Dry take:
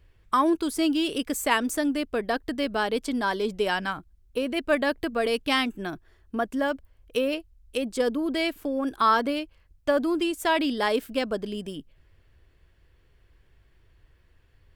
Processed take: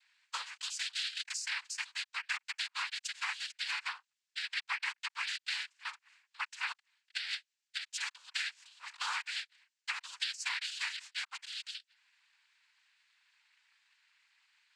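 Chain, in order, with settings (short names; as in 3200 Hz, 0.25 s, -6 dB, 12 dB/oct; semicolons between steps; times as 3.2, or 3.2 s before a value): steep high-pass 1600 Hz 48 dB/oct; compressor 12:1, threshold -36 dBFS, peak gain reduction 14.5 dB; noise vocoder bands 8; gain +3.5 dB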